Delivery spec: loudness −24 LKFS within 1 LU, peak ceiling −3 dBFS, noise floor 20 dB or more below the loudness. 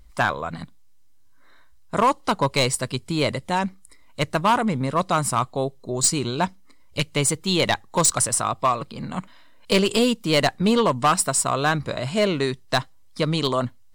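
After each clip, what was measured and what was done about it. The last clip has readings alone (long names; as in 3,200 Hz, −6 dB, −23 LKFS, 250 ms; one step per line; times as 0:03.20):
share of clipped samples 0.7%; peaks flattened at −12.0 dBFS; integrated loudness −22.5 LKFS; sample peak −12.0 dBFS; target loudness −24.0 LKFS
→ clipped peaks rebuilt −12 dBFS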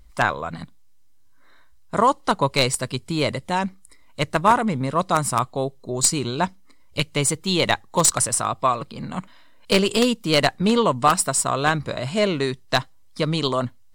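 share of clipped samples 0.0%; integrated loudness −21.5 LKFS; sample peak −3.0 dBFS; target loudness −24.0 LKFS
→ level −2.5 dB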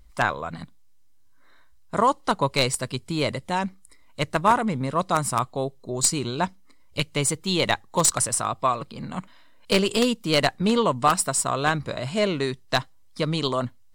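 integrated loudness −24.0 LKFS; sample peak −5.5 dBFS; background noise floor −51 dBFS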